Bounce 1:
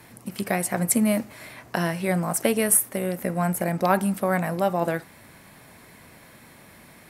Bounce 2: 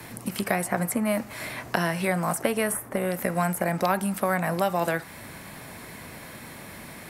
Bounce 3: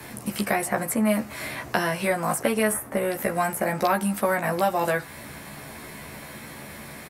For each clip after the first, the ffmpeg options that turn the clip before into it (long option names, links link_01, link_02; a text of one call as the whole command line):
ffmpeg -i in.wav -filter_complex "[0:a]acrossover=split=100|750|1700[link_01][link_02][link_03][link_04];[link_01]acompressor=threshold=-55dB:ratio=4[link_05];[link_02]acompressor=threshold=-36dB:ratio=4[link_06];[link_03]acompressor=threshold=-35dB:ratio=4[link_07];[link_04]acompressor=threshold=-41dB:ratio=4[link_08];[link_05][link_06][link_07][link_08]amix=inputs=4:normalize=0,volume=7.5dB" out.wav
ffmpeg -i in.wav -filter_complex "[0:a]asplit=2[link_01][link_02];[link_02]adelay=14,volume=-3dB[link_03];[link_01][link_03]amix=inputs=2:normalize=0" out.wav